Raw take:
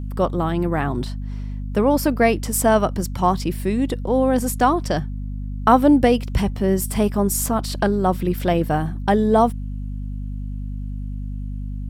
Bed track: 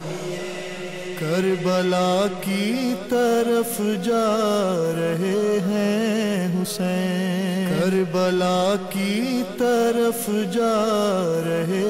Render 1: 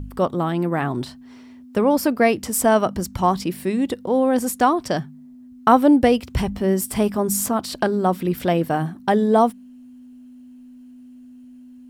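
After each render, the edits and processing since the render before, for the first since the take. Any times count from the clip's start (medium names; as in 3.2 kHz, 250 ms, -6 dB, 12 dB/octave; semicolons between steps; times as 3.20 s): de-hum 50 Hz, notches 4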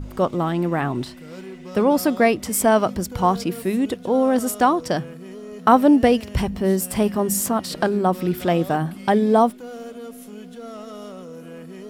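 add bed track -17 dB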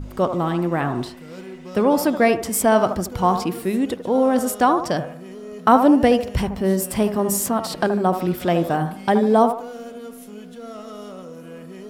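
feedback echo behind a band-pass 75 ms, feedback 37%, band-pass 780 Hz, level -7.5 dB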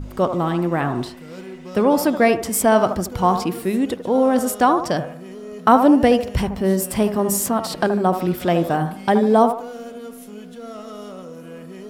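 trim +1 dB; peak limiter -3 dBFS, peak gain reduction 1 dB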